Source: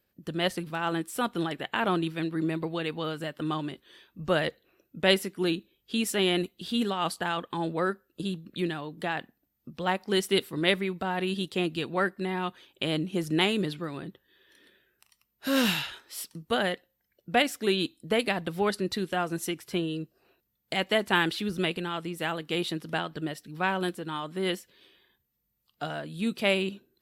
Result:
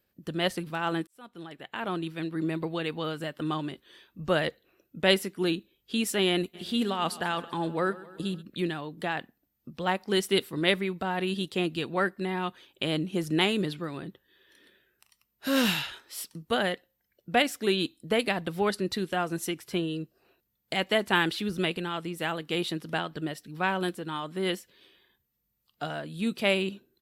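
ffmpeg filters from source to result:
-filter_complex "[0:a]asplit=3[s0][s1][s2];[s0]afade=t=out:st=6.53:d=0.02[s3];[s1]aecho=1:1:131|262|393|524|655:0.119|0.0713|0.0428|0.0257|0.0154,afade=t=in:st=6.53:d=0.02,afade=t=out:st=8.41:d=0.02[s4];[s2]afade=t=in:st=8.41:d=0.02[s5];[s3][s4][s5]amix=inputs=3:normalize=0,asplit=2[s6][s7];[s6]atrim=end=1.07,asetpts=PTS-STARTPTS,afade=t=out:st=1.066:d=0.004:c=hsin[s8];[s7]atrim=start=1.07,asetpts=PTS-STARTPTS,afade=t=in:d=1.56[s9];[s8][s9]concat=n=2:v=0:a=1"

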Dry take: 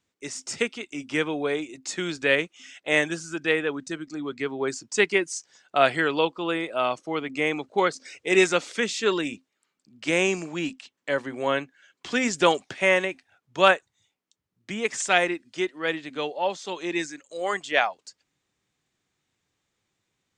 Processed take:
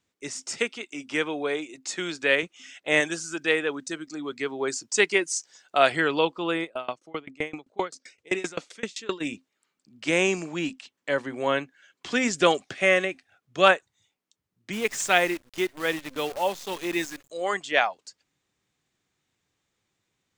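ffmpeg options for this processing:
-filter_complex "[0:a]asettb=1/sr,asplit=3[s0][s1][s2];[s0]atrim=end=0.434[s3];[s1]atrim=start=0.43:end=2.43,asetpts=PTS-STARTPTS,afade=t=in:d=0.004:c=qsin,afade=t=out:st=1.996:d=0.004:c=qsin,highpass=f=290:p=1[s4];[s2]atrim=start=2.426[s5];[s3][s4]acrossfade=d=0.004:c1=hsin:c2=qsin[s6];[s6][s5]acrossfade=d=0.004:c1=qsin:c2=hsin,asettb=1/sr,asplit=3[s7][s8][s9];[s7]atrim=end=3.004[s10];[s8]atrim=start=3:end=5.92,asetpts=PTS-STARTPTS,afade=t=in:d=0.004:c=qsin,afade=t=out:st=2.916:d=0.004:c=qsin,bass=f=250:g=-6,treble=f=4000:g=5[s11];[s9]atrim=start=5.916[s12];[s10][s11]acrossfade=d=0.004:c1=hsin:c2=qsin[s13];[s13][s12]acrossfade=d=0.004:c1=qsin:c2=hsin,asplit=3[s14][s15][s16];[s14]afade=t=out:st=6.63:d=0.02[s17];[s15]aeval=exprs='val(0)*pow(10,-27*if(lt(mod(7.7*n/s,1),2*abs(7.7)/1000),1-mod(7.7*n/s,1)/(2*abs(7.7)/1000),(mod(7.7*n/s,1)-2*abs(7.7)/1000)/(1-2*abs(7.7)/1000))/20)':c=same,afade=t=in:st=6.63:d=0.02,afade=t=out:st=9.2:d=0.02[s18];[s16]afade=t=in:st=9.2:d=0.02[s19];[s17][s18][s19]amix=inputs=3:normalize=0,asettb=1/sr,asplit=3[s20][s21][s22];[s20]atrim=end=12.294[s23];[s21]atrim=start=12.29:end=13.66,asetpts=PTS-STARTPTS,afade=t=in:d=0.004:c=qsin,afade=t=out:st=1.366:d=0.004:c=qsin,asuperstop=centerf=920:order=4:qfactor=6.6[s24];[s22]atrim=start=13.656[s25];[s23][s24]acrossfade=d=0.004:c1=hsin:c2=qsin[s26];[s26][s25]acrossfade=d=0.004:c1=qsin:c2=hsin,asplit=3[s27][s28][s29];[s27]afade=t=out:st=14.72:d=0.02[s30];[s28]acrusher=bits=7:dc=4:mix=0:aa=0.000001,afade=t=in:st=14.72:d=0.02,afade=t=out:st=17.29:d=0.02[s31];[s29]afade=t=in:st=17.29:d=0.02[s32];[s30][s31][s32]amix=inputs=3:normalize=0"

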